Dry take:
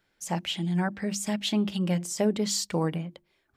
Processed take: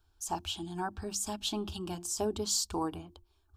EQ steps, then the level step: resonant low shelf 130 Hz +13.5 dB, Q 3; fixed phaser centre 540 Hz, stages 6; 0.0 dB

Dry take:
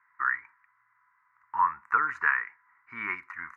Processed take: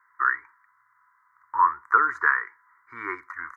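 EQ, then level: dynamic EQ 380 Hz, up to +6 dB, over -52 dBFS, Q 2.1; HPF 62 Hz; fixed phaser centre 710 Hz, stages 6; +6.0 dB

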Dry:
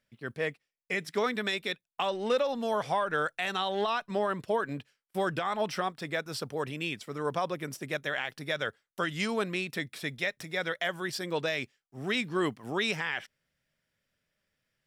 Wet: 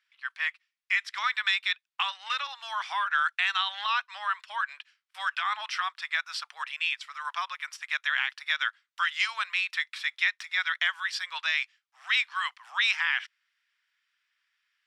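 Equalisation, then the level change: steep high-pass 1000 Hz 36 dB/oct; LPF 3300 Hz 12 dB/oct; tilt +3 dB/oct; +4.5 dB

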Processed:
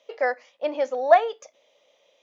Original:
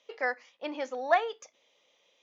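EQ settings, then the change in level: bell 600 Hz +11 dB 0.63 oct; +2.0 dB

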